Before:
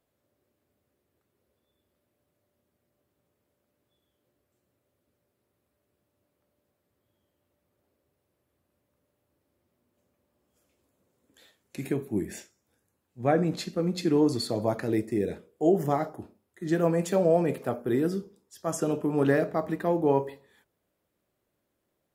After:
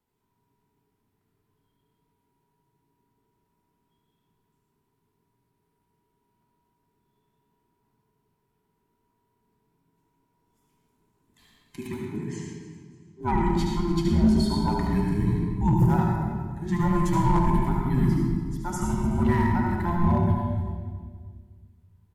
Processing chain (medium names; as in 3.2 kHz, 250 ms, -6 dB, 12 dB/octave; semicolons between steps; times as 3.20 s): every band turned upside down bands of 500 Hz; 11.87–13.21 s: cabinet simulation 180–7600 Hz, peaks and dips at 190 Hz -7 dB, 280 Hz -7 dB, 640 Hz -9 dB, 6.3 kHz +4 dB; on a send: feedback delay 295 ms, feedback 34%, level -15.5 dB; on the sum: reverberation RT60 1.5 s, pre-delay 74 ms, DRR -1 dB; in parallel at -3.5 dB: wavefolder -13.5 dBFS; on the sum: tone controls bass +4 dB, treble 0 dB; trim -8 dB